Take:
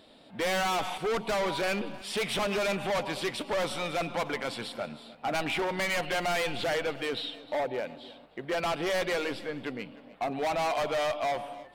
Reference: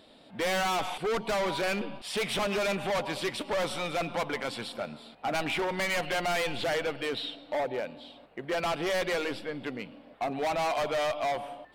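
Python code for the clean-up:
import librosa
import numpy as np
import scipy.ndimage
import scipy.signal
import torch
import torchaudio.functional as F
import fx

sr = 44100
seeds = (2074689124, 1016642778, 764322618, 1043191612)

y = fx.fix_echo_inverse(x, sr, delay_ms=308, level_db=-20.0)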